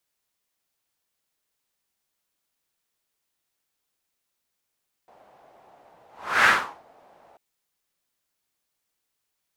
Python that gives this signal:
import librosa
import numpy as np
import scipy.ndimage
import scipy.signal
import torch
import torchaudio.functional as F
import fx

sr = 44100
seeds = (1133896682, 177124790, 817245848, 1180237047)

y = fx.whoosh(sr, seeds[0], length_s=2.29, peak_s=1.38, rise_s=0.4, fall_s=0.4, ends_hz=720.0, peak_hz=1600.0, q=3.0, swell_db=38.0)